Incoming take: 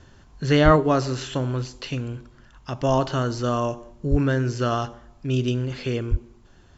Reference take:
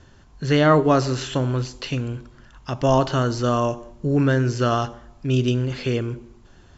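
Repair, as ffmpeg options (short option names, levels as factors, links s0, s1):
-filter_complex "[0:a]asplit=3[s0][s1][s2];[s0]afade=t=out:st=0.64:d=0.02[s3];[s1]highpass=f=140:w=0.5412,highpass=f=140:w=1.3066,afade=t=in:st=0.64:d=0.02,afade=t=out:st=0.76:d=0.02[s4];[s2]afade=t=in:st=0.76:d=0.02[s5];[s3][s4][s5]amix=inputs=3:normalize=0,asplit=3[s6][s7][s8];[s6]afade=t=out:st=4.1:d=0.02[s9];[s7]highpass=f=140:w=0.5412,highpass=f=140:w=1.3066,afade=t=in:st=4.1:d=0.02,afade=t=out:st=4.22:d=0.02[s10];[s8]afade=t=in:st=4.22:d=0.02[s11];[s9][s10][s11]amix=inputs=3:normalize=0,asplit=3[s12][s13][s14];[s12]afade=t=out:st=6.1:d=0.02[s15];[s13]highpass=f=140:w=0.5412,highpass=f=140:w=1.3066,afade=t=in:st=6.1:d=0.02,afade=t=out:st=6.22:d=0.02[s16];[s14]afade=t=in:st=6.22:d=0.02[s17];[s15][s16][s17]amix=inputs=3:normalize=0,asetnsamples=n=441:p=0,asendcmd='0.76 volume volume 3dB',volume=1"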